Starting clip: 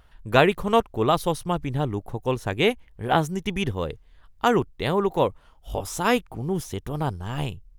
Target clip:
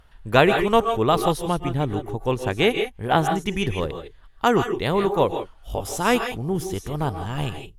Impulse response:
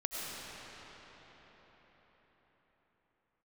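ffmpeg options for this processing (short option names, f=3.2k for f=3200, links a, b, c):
-filter_complex "[1:a]atrim=start_sample=2205,afade=t=out:st=0.15:d=0.01,atrim=end_sample=7056,asetrate=26901,aresample=44100[a];[0:a][a]afir=irnorm=-1:irlink=0,volume=1dB"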